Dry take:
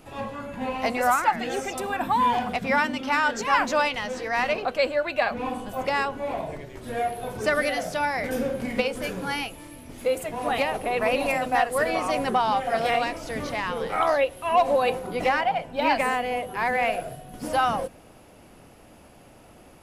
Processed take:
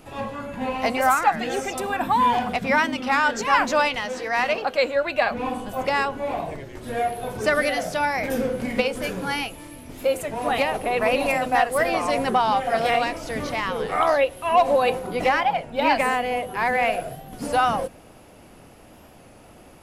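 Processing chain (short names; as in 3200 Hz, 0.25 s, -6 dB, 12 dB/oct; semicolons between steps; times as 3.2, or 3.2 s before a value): 4–4.96 low shelf 150 Hz -8.5 dB; record warp 33 1/3 rpm, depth 100 cents; gain +2.5 dB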